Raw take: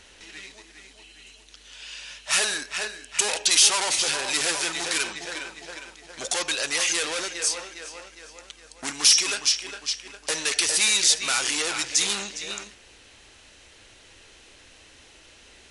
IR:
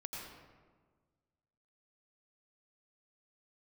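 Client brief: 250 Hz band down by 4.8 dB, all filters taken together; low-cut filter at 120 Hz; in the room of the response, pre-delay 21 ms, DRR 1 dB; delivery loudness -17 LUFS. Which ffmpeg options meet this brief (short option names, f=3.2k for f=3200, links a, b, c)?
-filter_complex "[0:a]highpass=120,equalizer=f=250:t=o:g=-7,asplit=2[a][b];[1:a]atrim=start_sample=2205,adelay=21[c];[b][c]afir=irnorm=-1:irlink=0,volume=0dB[d];[a][d]amix=inputs=2:normalize=0,volume=3.5dB"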